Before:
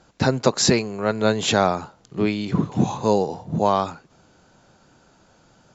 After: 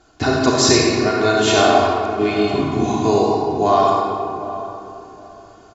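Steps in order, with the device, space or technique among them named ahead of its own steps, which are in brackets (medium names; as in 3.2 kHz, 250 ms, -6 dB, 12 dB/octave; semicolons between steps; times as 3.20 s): tunnel (flutter echo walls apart 5.8 m, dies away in 0.21 s; reverberation RT60 2.2 s, pre-delay 47 ms, DRR -2.5 dB); comb 2.8 ms, depth 90%; filtered feedback delay 763 ms, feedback 27%, low-pass 860 Hz, level -11.5 dB; trim -1 dB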